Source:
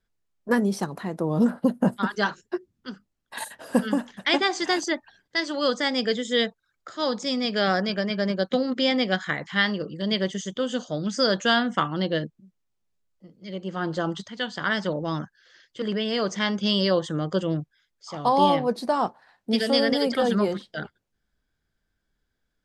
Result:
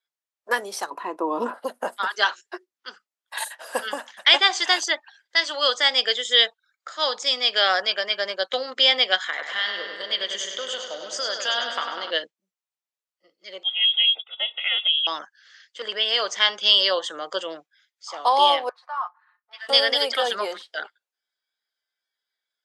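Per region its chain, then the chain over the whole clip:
0:00.90–0:01.54: downward expander −37 dBFS + high-shelf EQ 2,800 Hz −10.5 dB + hollow resonant body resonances 300/1,000/2,600 Hz, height 14 dB, ringing for 25 ms
0:09.23–0:12.11: downward compressor 5 to 1, threshold −26 dBFS + bucket-brigade delay 99 ms, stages 4,096, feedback 73%, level −6 dB
0:13.63–0:15.07: phaser with its sweep stopped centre 850 Hz, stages 8 + voice inversion scrambler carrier 3,600 Hz + Butterworth band-reject 1,700 Hz, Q 2.9
0:18.69–0:19.69: four-pole ladder band-pass 1,300 Hz, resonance 60% + comb filter 5.6 ms, depth 53%
whole clip: dynamic equaliser 3,200 Hz, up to +7 dB, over −43 dBFS, Q 2.8; noise reduction from a noise print of the clip's start 10 dB; Bessel high-pass filter 770 Hz, order 4; level +5 dB

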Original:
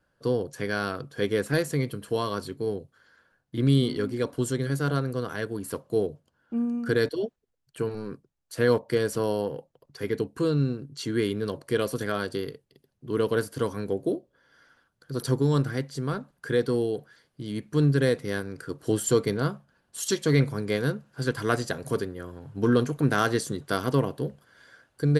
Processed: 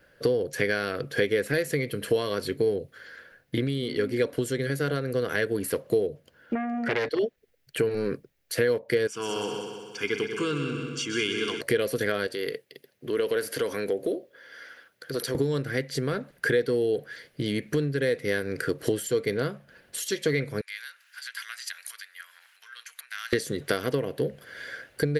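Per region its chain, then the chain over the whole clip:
0:06.55–0:07.19: high-frequency loss of the air 52 metres + saturating transformer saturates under 2,100 Hz
0:09.07–0:11.61: high-pass filter 750 Hz 6 dB per octave + phaser with its sweep stopped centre 2,800 Hz, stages 8 + echo machine with several playback heads 63 ms, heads second and third, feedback 55%, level −9 dB
0:12.27–0:15.35: high-pass filter 390 Hz 6 dB per octave + downward compressor 2.5 to 1, threshold −40 dBFS
0:20.61–0:23.33: downward compressor 5 to 1, threshold −39 dBFS + Bessel high-pass filter 1,900 Hz, order 6
whole clip: high-shelf EQ 3,800 Hz +10.5 dB; downward compressor 12 to 1, threshold −34 dBFS; octave-band graphic EQ 500/1,000/2,000/8,000 Hz +9/−7/+11/−8 dB; level +7.5 dB

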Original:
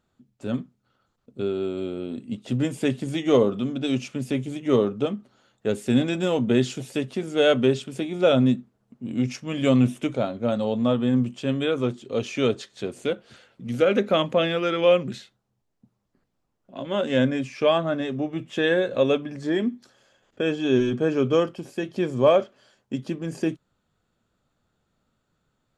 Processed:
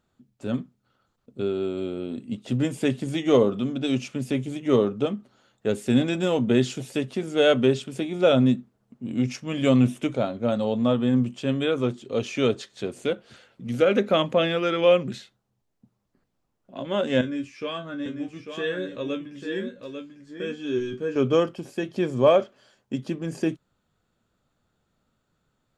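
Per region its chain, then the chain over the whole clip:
0:17.21–0:21.16: parametric band 720 Hz −12.5 dB 0.47 octaves + tuned comb filter 95 Hz, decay 0.18 s, mix 90% + single-tap delay 846 ms −7 dB
whole clip: no processing

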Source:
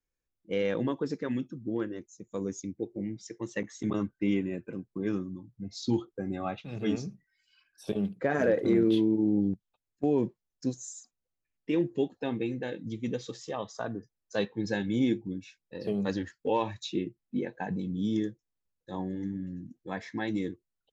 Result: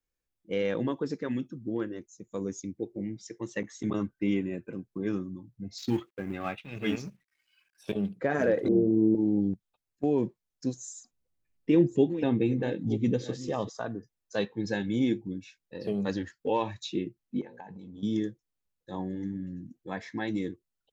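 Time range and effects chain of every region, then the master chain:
0:05.78–0:07.93: mu-law and A-law mismatch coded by A + drawn EQ curve 850 Hz 0 dB, 2,400 Hz +10 dB, 4,100 Hz +1 dB
0:08.68–0:09.15: Butterworth low-pass 800 Hz + double-tracking delay 37 ms −7 dB
0:10.95–0:13.70: delay that plays each chunk backwards 508 ms, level −12 dB + low-shelf EQ 440 Hz +9 dB
0:17.41–0:18.03: parametric band 890 Hz +11.5 dB 0.34 octaves + mains-hum notches 60/120/180/240/300/360/420/480/540 Hz + downward compressor 12 to 1, threshold −41 dBFS
whole clip: no processing

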